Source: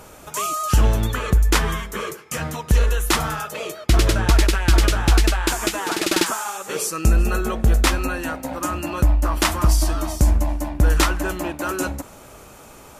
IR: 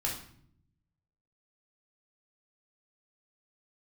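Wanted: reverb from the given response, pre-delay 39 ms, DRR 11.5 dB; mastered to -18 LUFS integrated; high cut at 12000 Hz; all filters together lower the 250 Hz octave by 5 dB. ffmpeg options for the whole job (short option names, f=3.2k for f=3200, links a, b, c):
-filter_complex "[0:a]lowpass=12k,equalizer=f=250:t=o:g=-7.5,asplit=2[a][b];[1:a]atrim=start_sample=2205,adelay=39[c];[b][c]afir=irnorm=-1:irlink=0,volume=-16dB[d];[a][d]amix=inputs=2:normalize=0,volume=2.5dB"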